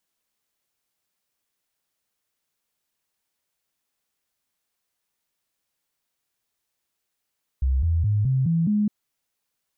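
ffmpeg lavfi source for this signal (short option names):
-f lavfi -i "aevalsrc='0.126*clip(min(mod(t,0.21),0.21-mod(t,0.21))/0.005,0,1)*sin(2*PI*65.8*pow(2,floor(t/0.21)/3)*mod(t,0.21))':d=1.26:s=44100"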